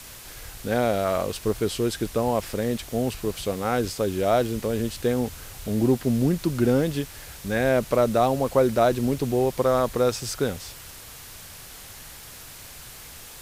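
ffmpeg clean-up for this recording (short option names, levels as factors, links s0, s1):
-af "adeclick=t=4,afwtdn=0.0079"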